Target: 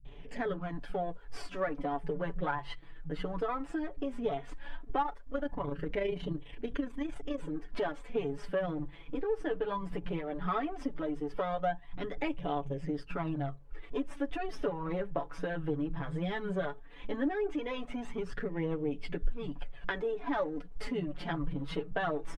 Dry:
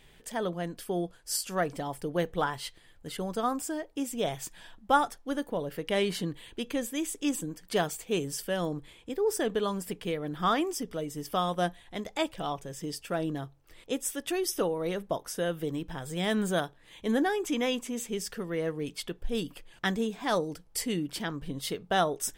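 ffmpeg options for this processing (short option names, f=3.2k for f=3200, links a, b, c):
-filter_complex "[0:a]aeval=exprs='if(lt(val(0),0),0.447*val(0),val(0))':c=same,lowpass=2k,aecho=1:1:7:0.84,asettb=1/sr,asplit=3[a][b][c];[a]atrim=end=4.974[d];[b]atrim=start=4.97:end=7.33,asetpts=PTS-STARTPTS,afade=t=in:d=0.004:c=qsin,afade=t=out:st=2.356:d=0.004:c=qsin,tremolo=f=27:d=0.571[e];[c]atrim=start=7.326[f];[d][e]acrossfade=d=0.004:c1=hsin:c2=qsin[g];[g][f]acrossfade=d=0.004:c1=qsin:c2=hsin,asoftclip=type=tanh:threshold=-10.5dB,flanger=delay=0.3:depth=6:regen=12:speed=0.16:shape=sinusoidal,acompressor=threshold=-40dB:ratio=3,lowshelf=f=66:g=5,acrossover=split=150[h][i];[i]adelay=50[j];[h][j]amix=inputs=2:normalize=0,volume=9dB" -ar 48000 -c:a libopus -b:a 48k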